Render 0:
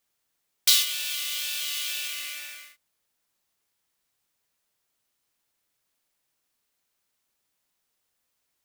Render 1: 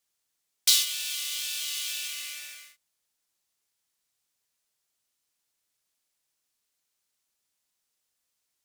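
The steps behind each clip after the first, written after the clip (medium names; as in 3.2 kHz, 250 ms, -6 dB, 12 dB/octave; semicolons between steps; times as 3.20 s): peaking EQ 7 kHz +7 dB 2.3 oct; trim -6.5 dB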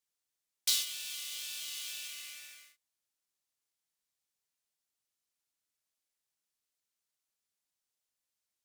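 short-mantissa float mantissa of 2-bit; trim -8.5 dB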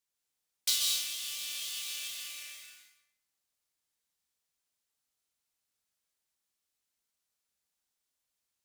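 plate-style reverb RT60 0.82 s, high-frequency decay 0.8×, pre-delay 120 ms, DRR 0.5 dB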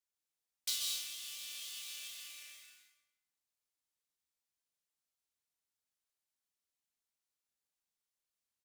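echo from a far wall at 62 m, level -24 dB; trim -7.5 dB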